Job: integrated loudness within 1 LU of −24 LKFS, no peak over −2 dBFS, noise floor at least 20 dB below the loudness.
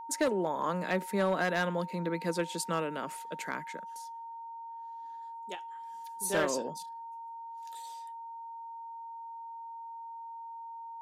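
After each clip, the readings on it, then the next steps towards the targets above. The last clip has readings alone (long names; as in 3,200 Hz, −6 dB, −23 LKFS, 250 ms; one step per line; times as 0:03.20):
share of clipped samples 0.3%; peaks flattened at −21.5 dBFS; interfering tone 920 Hz; level of the tone −41 dBFS; integrated loudness −36.0 LKFS; sample peak −21.5 dBFS; target loudness −24.0 LKFS
→ clipped peaks rebuilt −21.5 dBFS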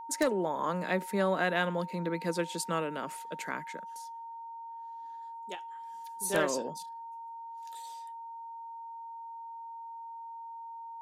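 share of clipped samples 0.0%; interfering tone 920 Hz; level of the tone −41 dBFS
→ notch filter 920 Hz, Q 30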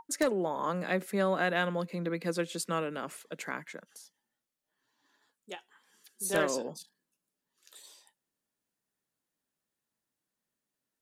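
interfering tone none found; integrated loudness −32.5 LKFS; sample peak −13.0 dBFS; target loudness −24.0 LKFS
→ level +8.5 dB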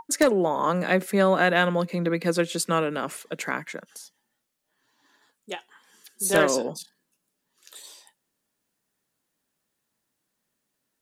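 integrated loudness −24.0 LKFS; sample peak −4.5 dBFS; background noise floor −79 dBFS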